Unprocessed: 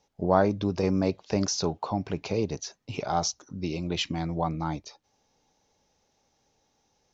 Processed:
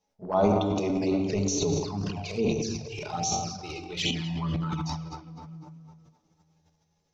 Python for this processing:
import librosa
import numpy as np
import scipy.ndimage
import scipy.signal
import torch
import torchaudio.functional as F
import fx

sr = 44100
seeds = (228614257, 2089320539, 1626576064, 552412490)

y = fx.noise_reduce_blind(x, sr, reduce_db=9)
y = fx.echo_filtered(y, sr, ms=248, feedback_pct=53, hz=3400.0, wet_db=-11.5)
y = fx.room_shoebox(y, sr, seeds[0], volume_m3=2300.0, walls='mixed', distance_m=1.4)
y = fx.transient(y, sr, attack_db=-3, sustain_db=11)
y = fx.env_flanger(y, sr, rest_ms=11.0, full_db=-24.5)
y = y * 10.0 ** (2.0 / 20.0)